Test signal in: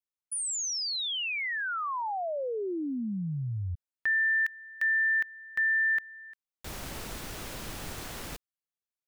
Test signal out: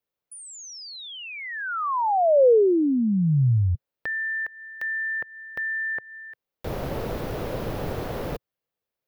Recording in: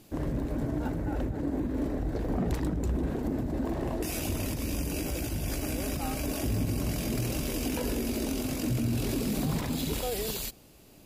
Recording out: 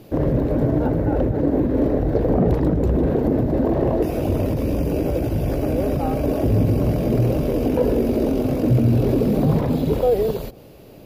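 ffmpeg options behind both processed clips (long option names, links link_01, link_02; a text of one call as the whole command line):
ffmpeg -i in.wav -filter_complex "[0:a]equalizer=frequency=125:width_type=o:width=1:gain=6,equalizer=frequency=500:width_type=o:width=1:gain=10,equalizer=frequency=8000:width_type=o:width=1:gain=-12,acrossover=split=1300[link_01][link_02];[link_02]acompressor=threshold=-48dB:ratio=4:attack=1.5:release=204:detection=peak[link_03];[link_01][link_03]amix=inputs=2:normalize=0,volume=7.5dB" out.wav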